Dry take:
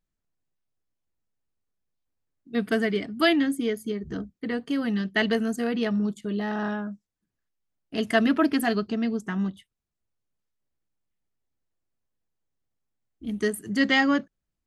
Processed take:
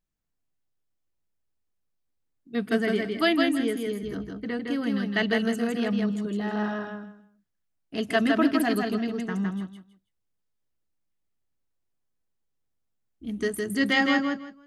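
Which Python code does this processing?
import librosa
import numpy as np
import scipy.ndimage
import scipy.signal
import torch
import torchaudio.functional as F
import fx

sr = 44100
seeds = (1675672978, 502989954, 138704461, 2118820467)

y = fx.echo_feedback(x, sr, ms=161, feedback_pct=21, wet_db=-3.5)
y = y * librosa.db_to_amplitude(-2.0)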